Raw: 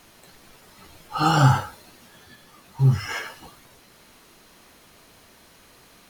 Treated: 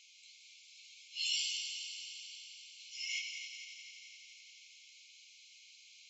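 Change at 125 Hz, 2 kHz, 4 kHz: under -40 dB, -11.5 dB, -1.5 dB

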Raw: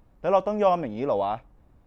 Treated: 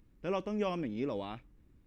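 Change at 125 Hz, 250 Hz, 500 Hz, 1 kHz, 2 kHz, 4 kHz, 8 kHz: -5.0 dB, -4.0 dB, -12.5 dB, -16.5 dB, -5.5 dB, -4.0 dB, n/a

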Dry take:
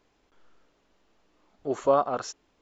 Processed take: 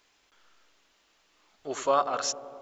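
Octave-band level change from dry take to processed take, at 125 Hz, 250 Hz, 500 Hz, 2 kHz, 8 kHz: -8.5 dB, -6.5 dB, -4.0 dB, +4.5 dB, n/a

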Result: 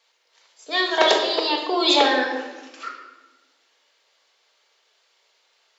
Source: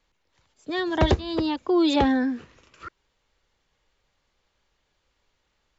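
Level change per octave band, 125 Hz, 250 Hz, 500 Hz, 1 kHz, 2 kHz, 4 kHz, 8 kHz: under -30 dB, -5.5 dB, +4.0 dB, +6.5 dB, +9.5 dB, +12.5 dB, n/a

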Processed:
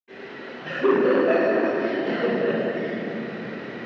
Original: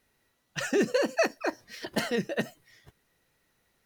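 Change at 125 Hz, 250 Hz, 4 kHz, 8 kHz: +5.5 dB, +8.5 dB, -0.5 dB, under -15 dB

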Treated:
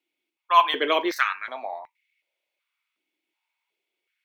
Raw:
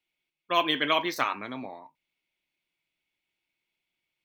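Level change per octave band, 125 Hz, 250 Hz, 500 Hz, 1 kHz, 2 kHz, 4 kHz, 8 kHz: under -15 dB, +0.5 dB, +4.0 dB, +7.5 dB, +3.5 dB, +0.5 dB, +0.5 dB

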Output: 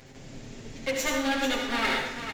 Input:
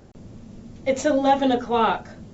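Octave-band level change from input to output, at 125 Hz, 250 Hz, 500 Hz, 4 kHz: -5.5, -7.0, -9.5, +3.5 dB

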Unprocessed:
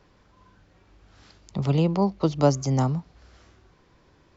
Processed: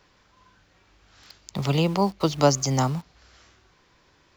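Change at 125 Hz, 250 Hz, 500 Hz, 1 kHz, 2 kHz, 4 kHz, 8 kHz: -1.5 dB, -1.0 dB, +1.0 dB, +3.5 dB, +7.0 dB, +8.5 dB, n/a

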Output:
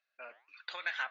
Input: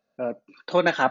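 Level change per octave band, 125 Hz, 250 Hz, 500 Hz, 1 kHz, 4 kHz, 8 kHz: under -40 dB, under -40 dB, -29.5 dB, -19.5 dB, -9.0 dB, n/a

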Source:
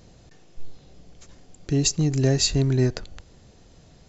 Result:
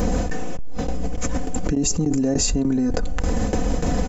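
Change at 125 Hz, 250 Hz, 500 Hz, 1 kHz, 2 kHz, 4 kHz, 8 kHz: -2.5 dB, +6.0 dB, +2.5 dB, +13.5 dB, +4.5 dB, -3.5 dB, n/a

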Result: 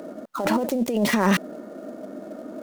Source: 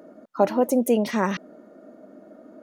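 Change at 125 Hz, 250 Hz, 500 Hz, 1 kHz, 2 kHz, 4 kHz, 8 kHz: +5.0, +1.5, -3.0, +0.5, +6.5, +7.5, +3.0 dB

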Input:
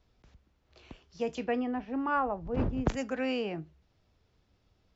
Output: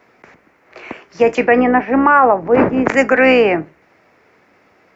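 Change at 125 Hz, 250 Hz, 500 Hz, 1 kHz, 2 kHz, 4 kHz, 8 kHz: +7.5 dB, +17.0 dB, +21.5 dB, +20.5 dB, +23.5 dB, +15.0 dB, n/a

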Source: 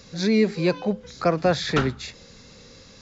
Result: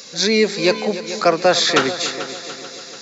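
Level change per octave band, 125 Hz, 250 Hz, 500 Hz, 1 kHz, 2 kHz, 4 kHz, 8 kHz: -5.0 dB, +1.0 dB, +6.0 dB, +7.5 dB, +9.0 dB, +13.0 dB, n/a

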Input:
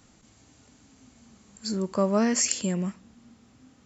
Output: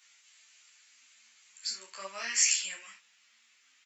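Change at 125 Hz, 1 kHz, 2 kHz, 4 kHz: under -35 dB, -12.0 dB, +2.5 dB, +2.0 dB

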